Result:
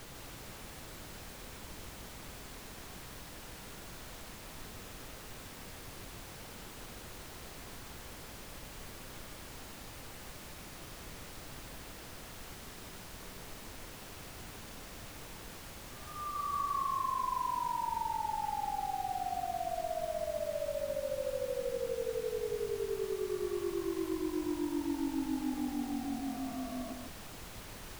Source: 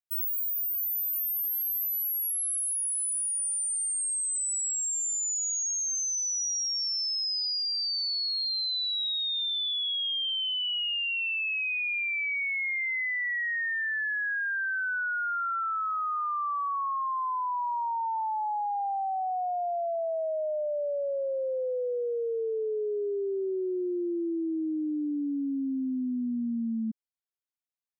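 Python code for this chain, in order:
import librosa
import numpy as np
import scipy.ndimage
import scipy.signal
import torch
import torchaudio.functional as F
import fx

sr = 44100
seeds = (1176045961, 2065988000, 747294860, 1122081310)

p1 = fx.sine_speech(x, sr)
p2 = fx.over_compress(p1, sr, threshold_db=-37.0, ratio=-1.0)
p3 = 10.0 ** (-36.0 / 20.0) * np.tanh(p2 / 10.0 ** (-36.0 / 20.0))
p4 = fx.brickwall_bandpass(p3, sr, low_hz=240.0, high_hz=1200.0)
p5 = fx.dmg_noise_colour(p4, sr, seeds[0], colour='pink', level_db=-53.0)
p6 = p5 + fx.echo_single(p5, sr, ms=150, db=-5.0, dry=0)
y = p6 * librosa.db_to_amplitude(4.5)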